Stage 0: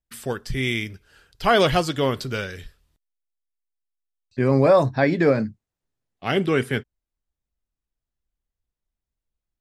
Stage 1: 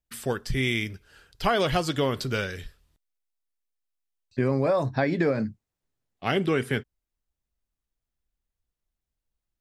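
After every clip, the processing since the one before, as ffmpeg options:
ffmpeg -i in.wav -af "acompressor=threshold=-20dB:ratio=6" out.wav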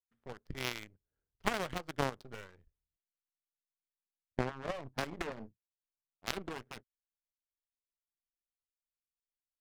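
ffmpeg -i in.wav -af "adynamicsmooth=sensitivity=5:basefreq=570,aeval=exprs='0.316*(cos(1*acos(clip(val(0)/0.316,-1,1)))-cos(1*PI/2))+0.1*(cos(3*acos(clip(val(0)/0.316,-1,1)))-cos(3*PI/2))+0.126*(cos(4*acos(clip(val(0)/0.316,-1,1)))-cos(4*PI/2))+0.0708*(cos(6*acos(clip(val(0)/0.316,-1,1)))-cos(6*PI/2))+0.002*(cos(8*acos(clip(val(0)/0.316,-1,1)))-cos(8*PI/2))':channel_layout=same,volume=-2dB" out.wav

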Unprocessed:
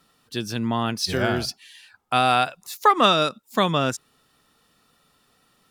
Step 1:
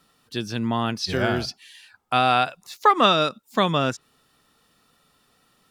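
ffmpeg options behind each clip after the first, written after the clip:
ffmpeg -i in.wav -filter_complex "[0:a]acrossover=split=6100[link_01][link_02];[link_02]acompressor=threshold=-49dB:ratio=4:attack=1:release=60[link_03];[link_01][link_03]amix=inputs=2:normalize=0" out.wav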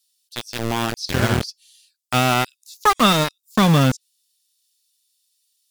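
ffmpeg -i in.wav -filter_complex "[0:a]asubboost=boost=8:cutoff=180,acrossover=split=4000[link_01][link_02];[link_01]aeval=exprs='val(0)*gte(abs(val(0)),0.119)':channel_layout=same[link_03];[link_03][link_02]amix=inputs=2:normalize=0,volume=2dB" out.wav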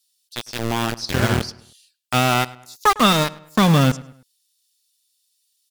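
ffmpeg -i in.wav -filter_complex "[0:a]asplit=2[link_01][link_02];[link_02]adelay=104,lowpass=frequency=3600:poles=1,volume=-19.5dB,asplit=2[link_03][link_04];[link_04]adelay=104,lowpass=frequency=3600:poles=1,volume=0.41,asplit=2[link_05][link_06];[link_06]adelay=104,lowpass=frequency=3600:poles=1,volume=0.41[link_07];[link_01][link_03][link_05][link_07]amix=inputs=4:normalize=0" out.wav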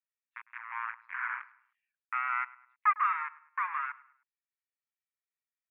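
ffmpeg -i in.wav -af "aeval=exprs='0.891*(cos(1*acos(clip(val(0)/0.891,-1,1)))-cos(1*PI/2))+0.2*(cos(2*acos(clip(val(0)/0.891,-1,1)))-cos(2*PI/2))':channel_layout=same,asuperpass=centerf=1500:order=12:qfactor=1.1,volume=-8dB" out.wav

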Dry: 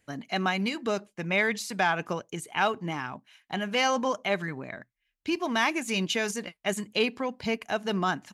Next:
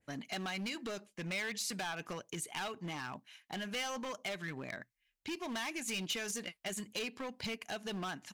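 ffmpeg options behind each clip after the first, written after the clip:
ffmpeg -i in.wav -af "acompressor=threshold=-33dB:ratio=3,asoftclip=type=hard:threshold=-32.5dB,adynamicequalizer=threshold=0.00316:dfrequency=1800:dqfactor=0.7:tfrequency=1800:tqfactor=0.7:attack=5:release=100:ratio=0.375:range=3:mode=boostabove:tftype=highshelf,volume=-4dB" out.wav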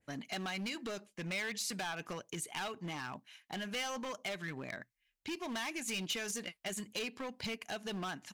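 ffmpeg -i in.wav -af anull out.wav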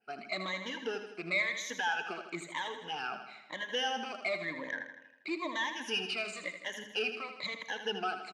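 ffmpeg -i in.wav -af "afftfilt=real='re*pow(10,21/40*sin(2*PI*(1.1*log(max(b,1)*sr/1024/100)/log(2)-(-1)*(pts-256)/sr)))':imag='im*pow(10,21/40*sin(2*PI*(1.1*log(max(b,1)*sr/1024/100)/log(2)-(-1)*(pts-256)/sr)))':win_size=1024:overlap=0.75,highpass=340,lowpass=3800,aecho=1:1:80|160|240|320|400|480|560:0.355|0.206|0.119|0.0692|0.0402|0.0233|0.0135" out.wav

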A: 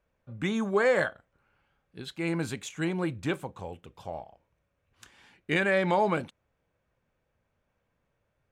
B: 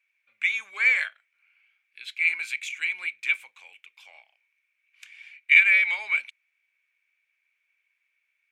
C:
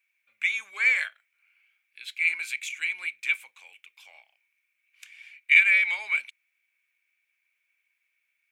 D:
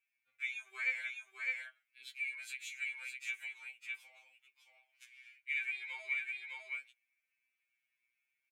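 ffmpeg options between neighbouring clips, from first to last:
ffmpeg -i in.wav -af "highpass=frequency=2300:width_type=q:width=11,volume=-1dB" out.wav
ffmpeg -i in.wav -af "highshelf=frequency=7900:gain=10,volume=-2dB" out.wav
ffmpeg -i in.wav -af "aecho=1:1:608:0.596,acompressor=threshold=-30dB:ratio=2,afftfilt=real='re*2.45*eq(mod(b,6),0)':imag='im*2.45*eq(mod(b,6),0)':win_size=2048:overlap=0.75,volume=-8dB" out.wav

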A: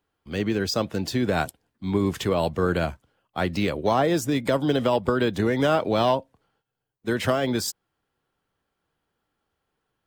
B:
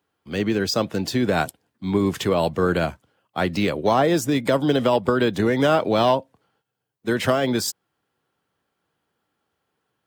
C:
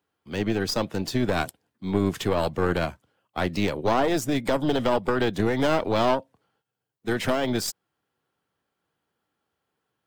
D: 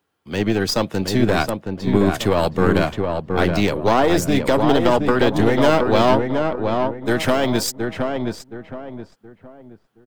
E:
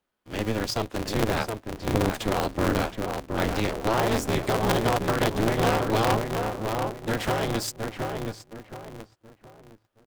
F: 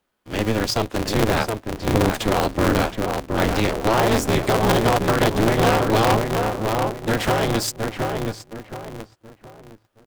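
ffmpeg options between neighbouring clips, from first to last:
ffmpeg -i in.wav -af "highpass=100,volume=3dB" out.wav
ffmpeg -i in.wav -af "aeval=exprs='(tanh(4.47*val(0)+0.7)-tanh(0.7))/4.47':channel_layout=same" out.wav
ffmpeg -i in.wav -filter_complex "[0:a]asplit=2[link_01][link_02];[link_02]adelay=721,lowpass=frequency=1600:poles=1,volume=-4dB,asplit=2[link_03][link_04];[link_04]adelay=721,lowpass=frequency=1600:poles=1,volume=0.35,asplit=2[link_05][link_06];[link_06]adelay=721,lowpass=frequency=1600:poles=1,volume=0.35,asplit=2[link_07][link_08];[link_08]adelay=721,lowpass=frequency=1600:poles=1,volume=0.35[link_09];[link_01][link_03][link_05][link_07][link_09]amix=inputs=5:normalize=0,volume=6dB" out.wav
ffmpeg -i in.wav -af "aeval=exprs='val(0)*sgn(sin(2*PI*110*n/s))':channel_layout=same,volume=-8dB" out.wav
ffmpeg -i in.wav -af "asoftclip=type=tanh:threshold=-12dB,volume=6.5dB" out.wav

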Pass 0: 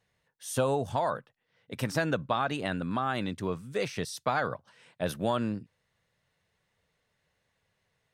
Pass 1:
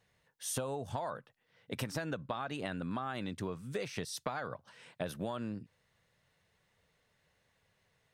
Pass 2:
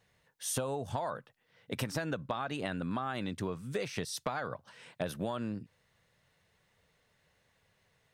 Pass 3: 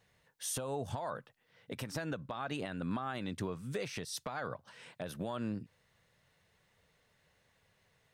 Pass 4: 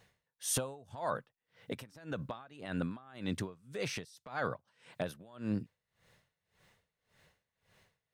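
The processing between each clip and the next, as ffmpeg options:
ffmpeg -i in.wav -af "acompressor=threshold=-36dB:ratio=10,volume=2dB" out.wav
ffmpeg -i in.wav -af "asoftclip=type=hard:threshold=-22.5dB,volume=2.5dB" out.wav
ffmpeg -i in.wav -af "alimiter=level_in=3dB:limit=-24dB:level=0:latency=1:release=227,volume=-3dB" out.wav
ffmpeg -i in.wav -af "aeval=exprs='val(0)*pow(10,-24*(0.5-0.5*cos(2*PI*1.8*n/s))/20)':channel_layout=same,volume=6dB" out.wav

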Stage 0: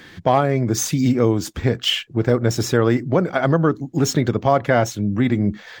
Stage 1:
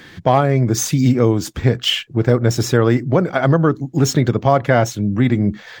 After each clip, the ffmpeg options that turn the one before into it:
ffmpeg -i in.wav -af "equalizer=frequency=130:width=4.6:gain=4.5,volume=2dB" out.wav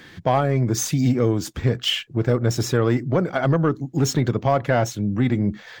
ffmpeg -i in.wav -af "asoftclip=type=tanh:threshold=-4dB,volume=-4dB" out.wav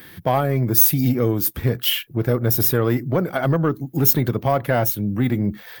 ffmpeg -i in.wav -af "aexciter=amount=12.3:drive=5.8:freq=10000" out.wav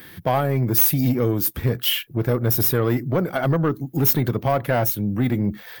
ffmpeg -i in.wav -af "asoftclip=type=tanh:threshold=-10dB" out.wav

